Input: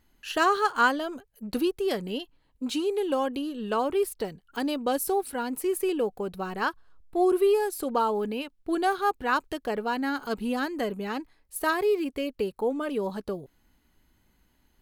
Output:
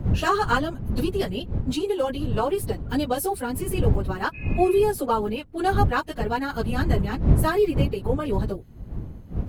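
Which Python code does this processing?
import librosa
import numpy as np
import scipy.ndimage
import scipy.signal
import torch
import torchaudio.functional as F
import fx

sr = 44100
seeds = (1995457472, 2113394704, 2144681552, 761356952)

y = fx.dmg_wind(x, sr, seeds[0], corner_hz=120.0, level_db=-28.0)
y = fx.spec_repair(y, sr, seeds[1], start_s=6.81, length_s=0.69, low_hz=1400.0, high_hz=2800.0, source='after')
y = fx.stretch_vocoder_free(y, sr, factor=0.64)
y = F.gain(torch.from_numpy(y), 5.5).numpy()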